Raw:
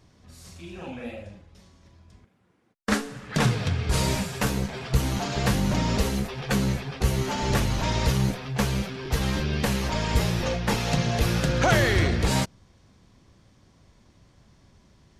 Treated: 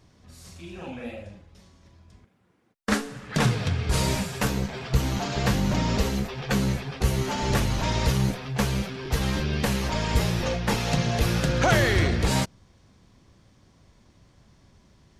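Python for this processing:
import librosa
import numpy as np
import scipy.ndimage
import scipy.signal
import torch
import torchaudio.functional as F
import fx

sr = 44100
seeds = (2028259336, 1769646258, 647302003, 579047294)

y = fx.peak_eq(x, sr, hz=10000.0, db=-6.5, octaves=0.47, at=(4.47, 6.56))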